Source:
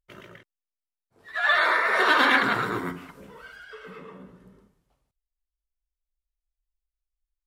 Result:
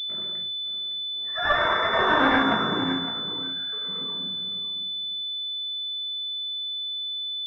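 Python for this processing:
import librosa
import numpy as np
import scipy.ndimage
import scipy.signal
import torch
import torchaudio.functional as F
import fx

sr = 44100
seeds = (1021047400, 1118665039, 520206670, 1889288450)

y = fx.highpass(x, sr, hz=110.0, slope=6)
y = fx.notch(y, sr, hz=440.0, q=12.0)
y = y + 10.0 ** (-13.0 / 20.0) * np.pad(y, (int(560 * sr / 1000.0), 0))[:len(y)]
y = fx.room_shoebox(y, sr, seeds[0], volume_m3=280.0, walls='furnished', distance_m=1.6)
y = fx.pwm(y, sr, carrier_hz=3500.0)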